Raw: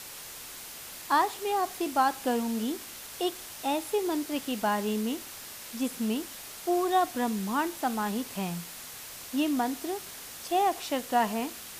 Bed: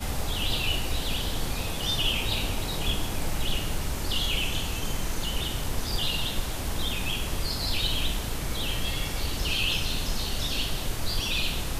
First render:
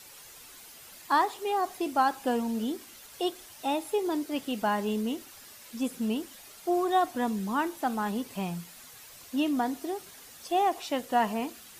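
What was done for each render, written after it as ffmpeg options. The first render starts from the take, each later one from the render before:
ffmpeg -i in.wav -af "afftdn=noise_reduction=9:noise_floor=-44" out.wav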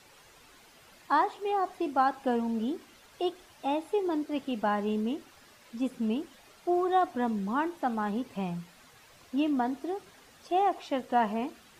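ffmpeg -i in.wav -af "aemphasis=mode=reproduction:type=75kf" out.wav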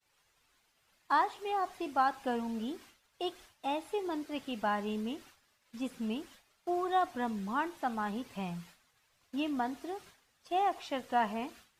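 ffmpeg -i in.wav -af "agate=range=-33dB:threshold=-46dB:ratio=3:detection=peak,equalizer=frequency=330:width=0.49:gain=-7" out.wav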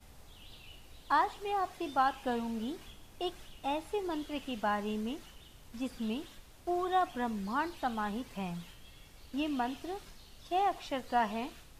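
ffmpeg -i in.wav -i bed.wav -filter_complex "[1:a]volume=-25.5dB[link_01];[0:a][link_01]amix=inputs=2:normalize=0" out.wav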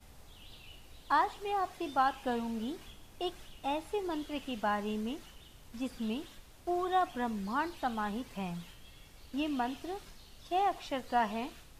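ffmpeg -i in.wav -af anull out.wav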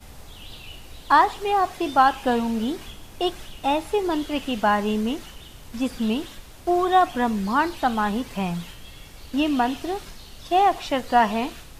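ffmpeg -i in.wav -af "volume=12dB" out.wav

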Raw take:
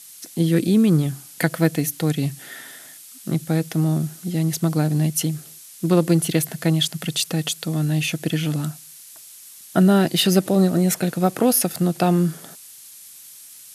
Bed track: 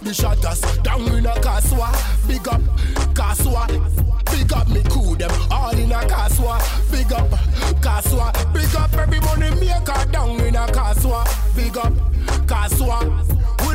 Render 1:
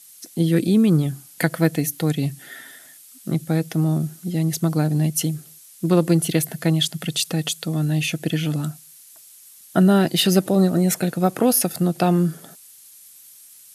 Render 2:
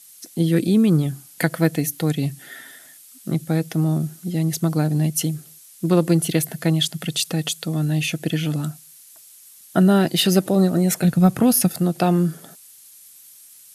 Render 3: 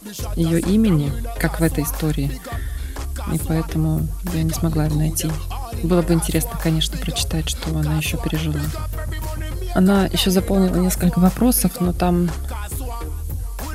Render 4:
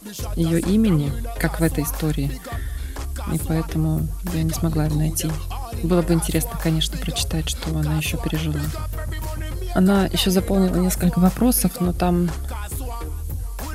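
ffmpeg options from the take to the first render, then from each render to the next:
ffmpeg -i in.wav -af "afftdn=noise_reduction=6:noise_floor=-43" out.wav
ffmpeg -i in.wav -filter_complex "[0:a]asplit=3[link_01][link_02][link_03];[link_01]afade=type=out:start_time=11.03:duration=0.02[link_04];[link_02]asubboost=boost=10:cutoff=150,afade=type=in:start_time=11.03:duration=0.02,afade=type=out:start_time=11.67:duration=0.02[link_05];[link_03]afade=type=in:start_time=11.67:duration=0.02[link_06];[link_04][link_05][link_06]amix=inputs=3:normalize=0" out.wav
ffmpeg -i in.wav -i bed.wav -filter_complex "[1:a]volume=-10dB[link_01];[0:a][link_01]amix=inputs=2:normalize=0" out.wav
ffmpeg -i in.wav -af "volume=-1.5dB" out.wav

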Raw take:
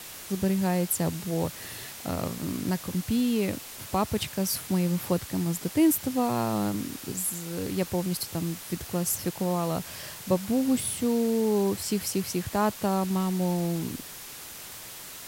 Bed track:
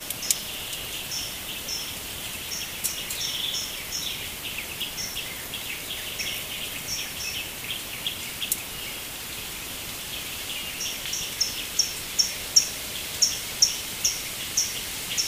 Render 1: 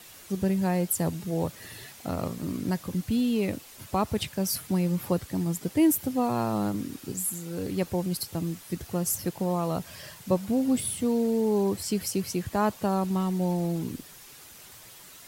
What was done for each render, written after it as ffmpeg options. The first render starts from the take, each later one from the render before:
ffmpeg -i in.wav -af "afftdn=noise_reduction=8:noise_floor=-42" out.wav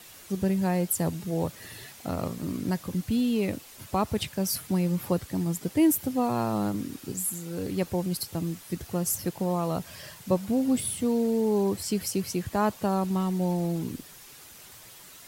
ffmpeg -i in.wav -af anull out.wav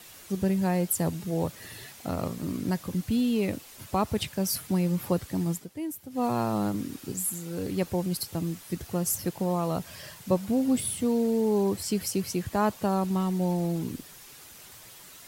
ffmpeg -i in.wav -filter_complex "[0:a]asplit=3[link_01][link_02][link_03];[link_01]atrim=end=5.67,asetpts=PTS-STARTPTS,afade=type=out:start_time=5.52:duration=0.15:silence=0.223872[link_04];[link_02]atrim=start=5.67:end=6.1,asetpts=PTS-STARTPTS,volume=-13dB[link_05];[link_03]atrim=start=6.1,asetpts=PTS-STARTPTS,afade=type=in:duration=0.15:silence=0.223872[link_06];[link_04][link_05][link_06]concat=n=3:v=0:a=1" out.wav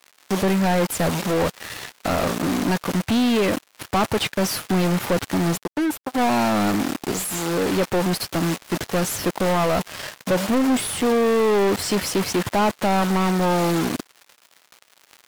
ffmpeg -i in.wav -filter_complex "[0:a]acrusher=bits=5:mix=0:aa=0.5,asplit=2[link_01][link_02];[link_02]highpass=frequency=720:poles=1,volume=30dB,asoftclip=type=tanh:threshold=-11.5dB[link_03];[link_01][link_03]amix=inputs=2:normalize=0,lowpass=frequency=2900:poles=1,volume=-6dB" out.wav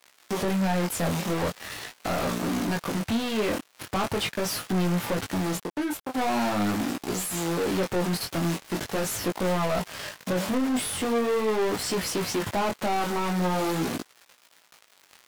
ffmpeg -i in.wav -af "flanger=delay=16.5:depth=7.2:speed=0.42,asoftclip=type=tanh:threshold=-21dB" out.wav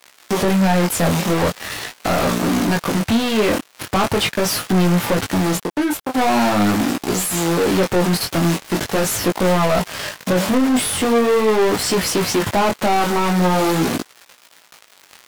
ffmpeg -i in.wav -af "volume=9.5dB" out.wav

